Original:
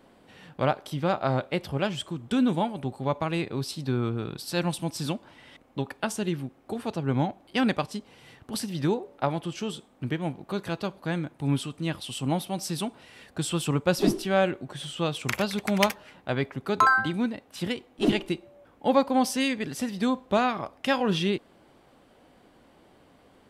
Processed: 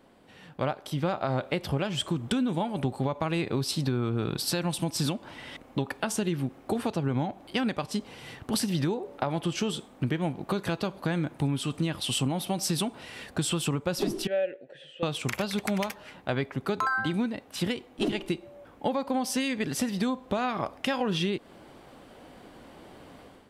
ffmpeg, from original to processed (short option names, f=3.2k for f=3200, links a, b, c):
-filter_complex "[0:a]asettb=1/sr,asplit=3[a][b][c];[a]atrim=end=14.274[d];[b]atrim=start=14.27:end=15.03,asetpts=PTS-STARTPTS,afade=t=in:d=0.004:c=qsin,afade=t=out:st=0.756:d=0.004:c=qsin,asplit=3[e][f][g];[e]bandpass=f=530:t=q:w=8,volume=0dB[h];[f]bandpass=f=1.84k:t=q:w=8,volume=-6dB[i];[g]bandpass=f=2.48k:t=q:w=8,volume=-9dB[j];[h][i][j]amix=inputs=3:normalize=0[k];[c]atrim=start=15.026[l];[d][k]acrossfade=d=0.004:c1=hsin:c2=qsin[m];[m][l]acrossfade=d=0.004:c1=qsin:c2=hsin,dynaudnorm=f=800:g=3:m=11.5dB,alimiter=limit=-11.5dB:level=0:latency=1:release=234,acompressor=threshold=-22dB:ratio=6,volume=-2dB"